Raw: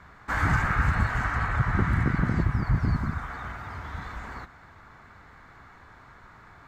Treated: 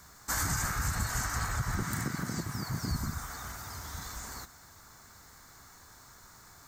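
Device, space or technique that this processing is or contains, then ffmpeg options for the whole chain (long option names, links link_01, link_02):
over-bright horn tweeter: -filter_complex "[0:a]asettb=1/sr,asplit=3[link_01][link_02][link_03];[link_01]atrim=end=1.824[link_04];[link_02]atrim=start=1.82:end=2.91,asetpts=PTS-STARTPTS,afade=type=in:duration=0.004:curve=qsin,afade=type=out:start_time=1.086:duration=0.004:curve=qsin,highpass=140[link_05];[link_03]atrim=start=2.906[link_06];[link_04][link_05]acrossfade=duration=0.004:curve1=hsin:curve2=qsin[link_07];[link_07][link_06]acrossfade=duration=0.004:curve1=qsin:curve2=hsin,highshelf=frequency=3900:width_type=q:width=1.5:gain=14,alimiter=limit=-17dB:level=0:latency=1:release=110,aemphasis=mode=production:type=50fm,volume=-5.5dB"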